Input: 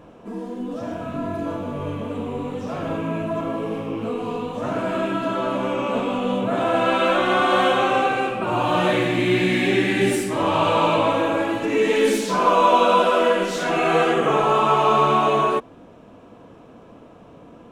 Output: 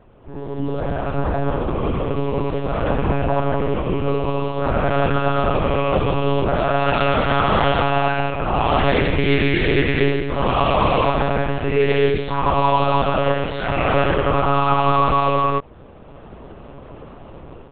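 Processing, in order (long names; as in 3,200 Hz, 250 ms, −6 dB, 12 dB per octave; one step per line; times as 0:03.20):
automatic gain control
one-pitch LPC vocoder at 8 kHz 140 Hz
level −4 dB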